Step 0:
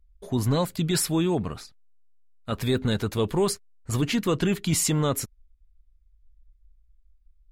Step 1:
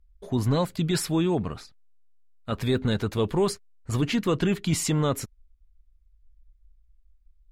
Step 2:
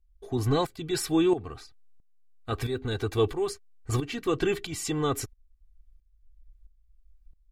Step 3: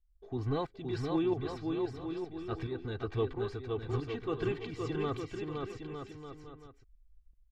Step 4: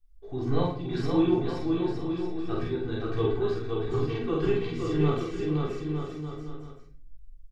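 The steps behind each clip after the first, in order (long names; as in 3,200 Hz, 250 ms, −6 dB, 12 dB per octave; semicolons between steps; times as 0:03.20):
high-shelf EQ 7,200 Hz −9 dB
comb filter 2.6 ms, depth 76%; shaped tremolo saw up 1.5 Hz, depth 75%
high-frequency loss of the air 210 metres; bouncing-ball delay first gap 520 ms, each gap 0.75×, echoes 5; level −7.5 dB
double-tracking delay 46 ms −2 dB; rectangular room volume 46 cubic metres, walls mixed, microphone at 0.69 metres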